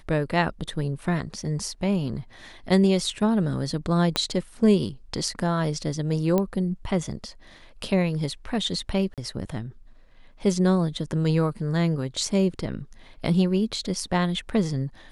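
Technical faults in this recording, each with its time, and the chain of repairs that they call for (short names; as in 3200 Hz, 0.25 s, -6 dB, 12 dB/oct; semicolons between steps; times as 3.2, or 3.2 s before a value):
4.16 pop -8 dBFS
6.38 pop -11 dBFS
9.14–9.18 gap 37 ms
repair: de-click; interpolate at 9.14, 37 ms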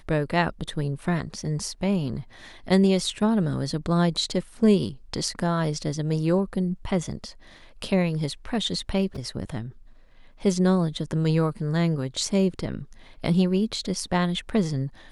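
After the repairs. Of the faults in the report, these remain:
4.16 pop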